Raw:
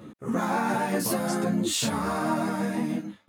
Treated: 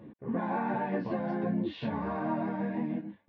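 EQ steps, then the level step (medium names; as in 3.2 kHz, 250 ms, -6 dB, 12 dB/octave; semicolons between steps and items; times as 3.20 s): Gaussian low-pass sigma 3.4 samples; Butterworth band-stop 1.3 kHz, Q 4.9; -4.5 dB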